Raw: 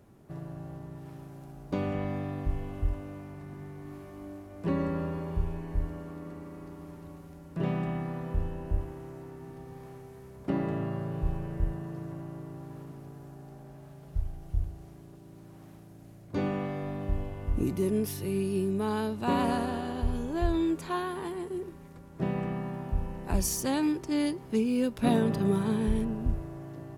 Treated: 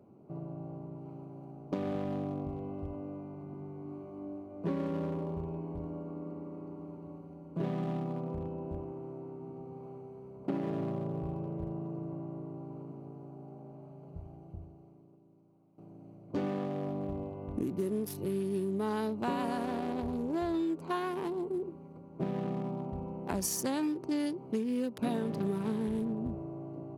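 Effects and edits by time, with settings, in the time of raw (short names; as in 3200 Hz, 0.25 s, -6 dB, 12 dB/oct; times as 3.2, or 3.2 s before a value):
14.32–15.78 fade out quadratic, to -16.5 dB
whole clip: Wiener smoothing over 25 samples; HPF 170 Hz 12 dB/oct; compressor, threshold -32 dBFS; gain +2.5 dB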